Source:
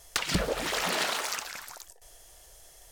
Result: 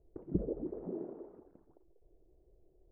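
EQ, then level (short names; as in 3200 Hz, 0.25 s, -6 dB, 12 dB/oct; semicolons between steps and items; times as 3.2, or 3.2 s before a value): ladder low-pass 400 Hz, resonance 60%; +3.5 dB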